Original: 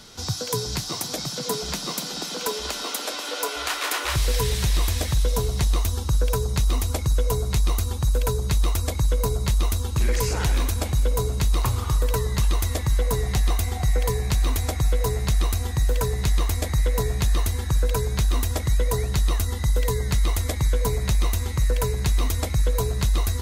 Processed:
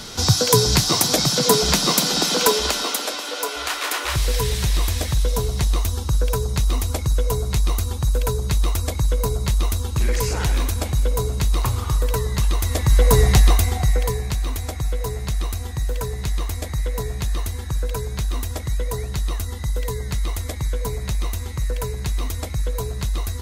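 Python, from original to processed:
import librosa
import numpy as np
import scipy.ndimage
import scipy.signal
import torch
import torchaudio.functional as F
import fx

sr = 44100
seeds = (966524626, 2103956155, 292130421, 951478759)

y = fx.gain(x, sr, db=fx.line((2.42, 11.0), (3.27, 1.5), (12.6, 1.5), (13.21, 10.5), (14.42, -2.5)))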